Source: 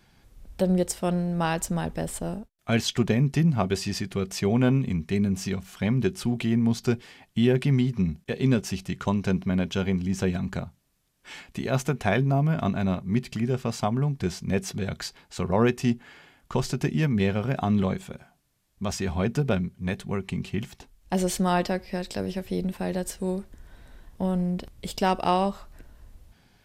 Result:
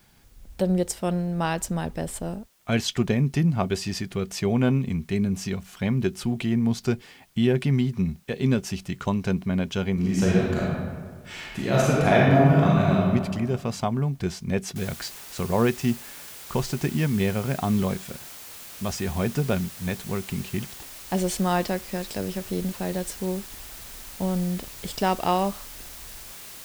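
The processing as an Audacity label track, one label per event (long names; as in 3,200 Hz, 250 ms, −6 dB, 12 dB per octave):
9.930000	13.040000	thrown reverb, RT60 1.6 s, DRR −5.5 dB
14.760000	14.760000	noise floor change −64 dB −42 dB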